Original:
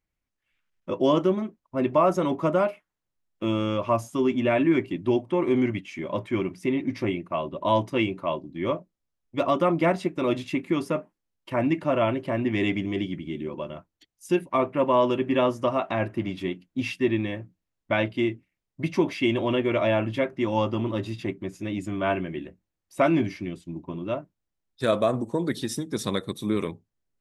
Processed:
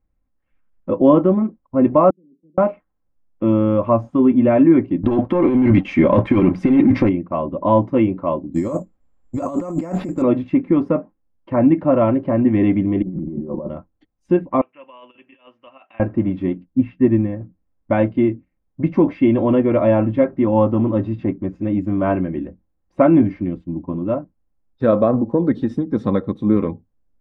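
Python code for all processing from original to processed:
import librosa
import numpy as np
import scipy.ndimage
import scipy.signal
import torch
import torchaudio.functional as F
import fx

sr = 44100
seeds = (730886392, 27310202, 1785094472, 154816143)

y = fx.chain(x, sr, fx.cheby1_bandpass(low_hz=150.0, high_hz=450.0, order=4),
    fx.gate_flip(shuts_db=-32.0, range_db=-36), at=(2.1, 2.58))
y = fx.chain(y, sr, fx.high_shelf(hz=2100.0, db=12.0),
    fx.leveller(passes=2),
    fx.over_compress(threshold_db=-22.0, ratio=-1.0), at=(5.03, 7.09))
y = fx.chain(y, sr, fx.over_compress(threshold_db=-32.0, ratio=-1.0),
    fx.resample_bad(factor=6, down='none', up='zero_stuff'), at=(8.54, 10.22))
y = fx.chain(y, sr, fx.lowpass(hz=1100.0, slope=24),
    fx.over_compress(threshold_db=-37.0, ratio=-1.0),
    fx.comb(ms=5.5, depth=0.43), at=(13.02, 13.69))
y = fx.chain(y, sr, fx.bandpass_q(hz=2800.0, q=7.2),
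    fx.over_compress(threshold_db=-44.0, ratio=-0.5), at=(14.61, 16.0))
y = fx.chain(y, sr, fx.bass_treble(bass_db=5, treble_db=-14),
    fx.upward_expand(threshold_db=-31.0, expansion=1.5), at=(16.65, 17.41))
y = scipy.signal.sosfilt(scipy.signal.butter(2, 1100.0, 'lowpass', fs=sr, output='sos'), y)
y = fx.low_shelf(y, sr, hz=170.0, db=7.5)
y = y + 0.4 * np.pad(y, (int(3.8 * sr / 1000.0), 0))[:len(y)]
y = y * 10.0 ** (7.0 / 20.0)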